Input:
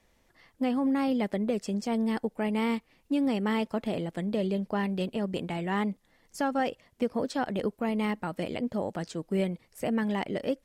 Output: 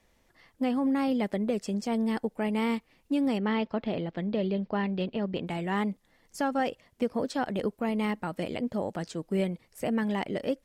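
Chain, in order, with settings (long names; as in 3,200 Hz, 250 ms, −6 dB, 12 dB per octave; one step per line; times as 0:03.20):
0:03.38–0:05.47: low-pass filter 4,600 Hz 24 dB per octave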